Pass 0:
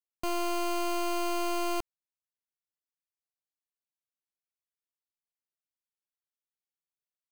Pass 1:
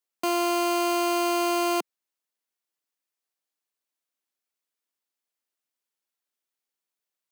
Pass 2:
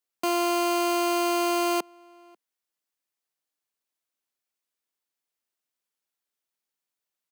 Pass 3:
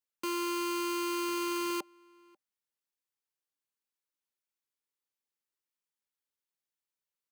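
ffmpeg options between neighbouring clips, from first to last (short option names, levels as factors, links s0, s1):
-af "highpass=f=210:w=0.5412,highpass=f=210:w=1.3066,volume=2.24"
-filter_complex "[0:a]asplit=2[s0][s1];[s1]adelay=542.3,volume=0.0447,highshelf=f=4000:g=-12.2[s2];[s0][s2]amix=inputs=2:normalize=0"
-af "asuperstop=centerf=680:order=12:qfactor=4.1,volume=0.447" -ar 44100 -c:a aac -b:a 160k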